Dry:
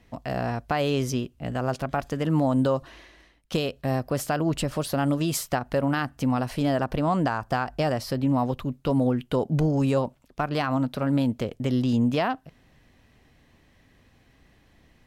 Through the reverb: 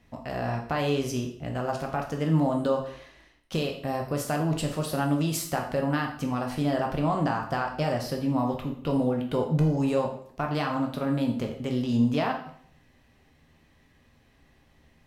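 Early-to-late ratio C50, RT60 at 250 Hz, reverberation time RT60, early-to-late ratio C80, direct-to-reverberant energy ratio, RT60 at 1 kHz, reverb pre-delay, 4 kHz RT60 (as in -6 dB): 7.5 dB, 0.60 s, 0.55 s, 11.0 dB, 1.5 dB, 0.60 s, 5 ms, 0.55 s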